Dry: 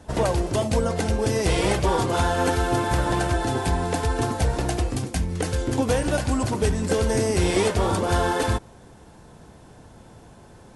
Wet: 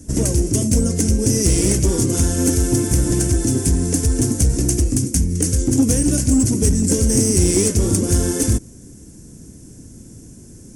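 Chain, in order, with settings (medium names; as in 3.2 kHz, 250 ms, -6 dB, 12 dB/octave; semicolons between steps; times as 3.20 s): FFT filter 180 Hz 0 dB, 280 Hz +4 dB, 850 Hz -24 dB, 2.2 kHz -11 dB, 3.9 kHz -14 dB, 5.9 kHz +8 dB; in parallel at -11.5 dB: wavefolder -19.5 dBFS; on the sum: trim +5.5 dB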